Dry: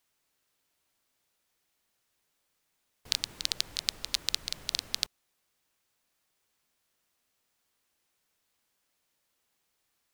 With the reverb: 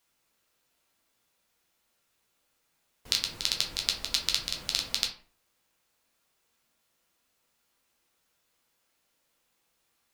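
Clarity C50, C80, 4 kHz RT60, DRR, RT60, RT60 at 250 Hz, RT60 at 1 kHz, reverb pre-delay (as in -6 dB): 8.5 dB, 14.0 dB, 0.30 s, 0.0 dB, 0.45 s, 0.50 s, 0.45 s, 8 ms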